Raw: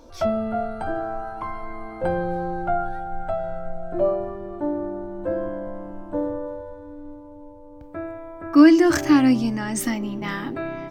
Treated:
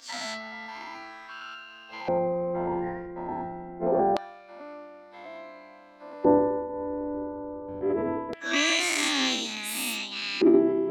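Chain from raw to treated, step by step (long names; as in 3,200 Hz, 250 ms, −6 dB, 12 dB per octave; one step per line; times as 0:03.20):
every bin's largest magnitude spread in time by 240 ms
parametric band 250 Hz +13.5 dB 0.42 octaves
auto-filter band-pass square 0.24 Hz 290–3,100 Hz
formants moved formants +5 semitones
level +2 dB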